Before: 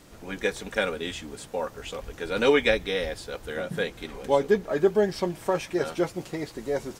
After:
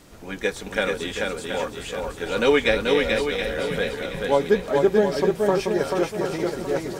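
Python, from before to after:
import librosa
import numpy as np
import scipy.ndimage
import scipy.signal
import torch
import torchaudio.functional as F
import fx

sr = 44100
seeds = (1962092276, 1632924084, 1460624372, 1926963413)

y = fx.echo_swing(x, sr, ms=725, ratio=1.5, feedback_pct=34, wet_db=-3.5)
y = y * 10.0 ** (2.0 / 20.0)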